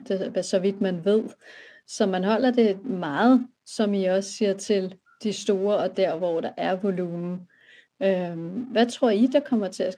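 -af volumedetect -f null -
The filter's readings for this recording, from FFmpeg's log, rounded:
mean_volume: -24.3 dB
max_volume: -7.2 dB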